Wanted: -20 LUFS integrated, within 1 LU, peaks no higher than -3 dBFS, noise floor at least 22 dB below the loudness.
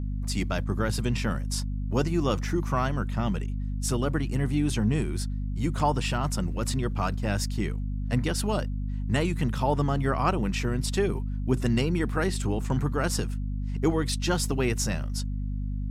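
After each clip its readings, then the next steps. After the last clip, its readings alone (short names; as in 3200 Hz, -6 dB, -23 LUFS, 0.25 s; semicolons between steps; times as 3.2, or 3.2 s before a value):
hum 50 Hz; harmonics up to 250 Hz; hum level -28 dBFS; loudness -28.0 LUFS; peak -11.0 dBFS; loudness target -20.0 LUFS
-> notches 50/100/150/200/250 Hz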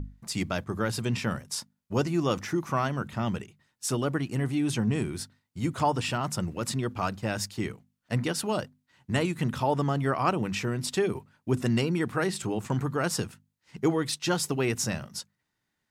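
hum none; loudness -29.5 LUFS; peak -11.5 dBFS; loudness target -20.0 LUFS
-> gain +9.5 dB; limiter -3 dBFS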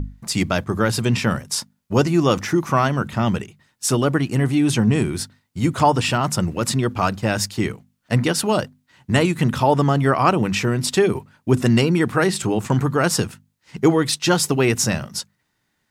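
loudness -20.0 LUFS; peak -3.0 dBFS; noise floor -71 dBFS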